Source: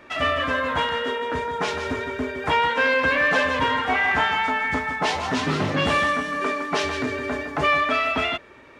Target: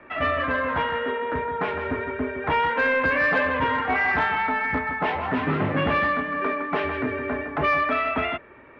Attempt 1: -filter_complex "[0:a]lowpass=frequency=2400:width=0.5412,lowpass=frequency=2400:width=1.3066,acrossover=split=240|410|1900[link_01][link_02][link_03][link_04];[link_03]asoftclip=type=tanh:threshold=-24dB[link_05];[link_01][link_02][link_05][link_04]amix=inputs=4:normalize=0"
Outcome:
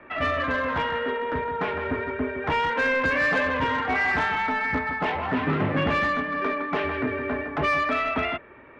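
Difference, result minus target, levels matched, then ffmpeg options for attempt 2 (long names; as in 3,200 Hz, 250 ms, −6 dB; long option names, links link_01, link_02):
soft clipping: distortion +7 dB
-filter_complex "[0:a]lowpass=frequency=2400:width=0.5412,lowpass=frequency=2400:width=1.3066,acrossover=split=240|410|1900[link_01][link_02][link_03][link_04];[link_03]asoftclip=type=tanh:threshold=-18dB[link_05];[link_01][link_02][link_05][link_04]amix=inputs=4:normalize=0"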